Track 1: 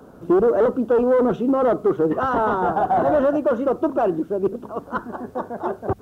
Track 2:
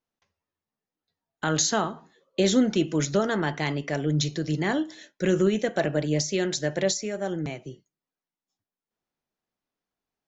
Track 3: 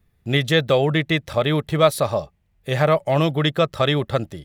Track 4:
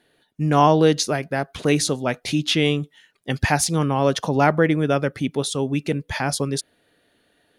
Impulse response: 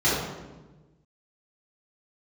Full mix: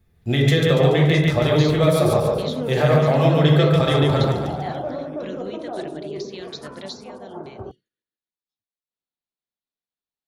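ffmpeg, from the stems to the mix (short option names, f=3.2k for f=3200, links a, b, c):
-filter_complex "[0:a]lowpass=1.7k,adelay=1700,volume=-14dB,asplit=2[a][b];[b]volume=-18dB[c];[1:a]lowpass=f=4k:t=q:w=3.7,volume=-13dB,asplit=2[d][e];[2:a]acompressor=threshold=-18dB:ratio=6,volume=0dB,asplit=3[f][g][h];[g]volume=-16.5dB[i];[h]volume=-3.5dB[j];[3:a]equalizer=f=700:w=2.2:g=-13.5,adelay=150,volume=-19dB,asplit=2[k][l];[l]volume=-5.5dB[m];[e]apad=whole_len=341202[n];[k][n]sidechaincompress=threshold=-52dB:ratio=8:attack=16:release=623[o];[4:a]atrim=start_sample=2205[p];[c][i]amix=inputs=2:normalize=0[q];[q][p]afir=irnorm=-1:irlink=0[r];[j][m]amix=inputs=2:normalize=0,aecho=0:1:143|286|429|572|715|858|1001:1|0.5|0.25|0.125|0.0625|0.0312|0.0156[s];[a][d][f][o][r][s]amix=inputs=6:normalize=0"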